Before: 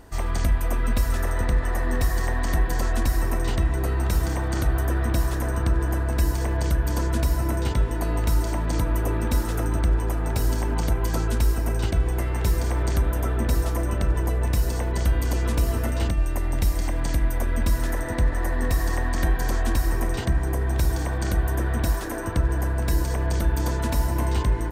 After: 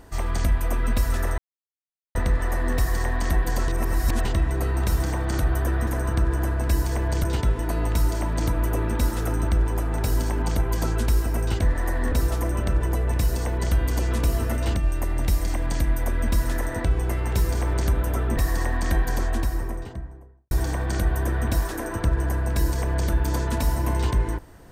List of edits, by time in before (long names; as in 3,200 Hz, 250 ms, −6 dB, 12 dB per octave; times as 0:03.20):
0:01.38: splice in silence 0.77 s
0:02.91–0:03.48: reverse
0:05.10–0:05.36: remove
0:06.73–0:07.56: remove
0:11.94–0:13.46: swap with 0:18.19–0:18.69
0:19.30–0:20.83: fade out and dull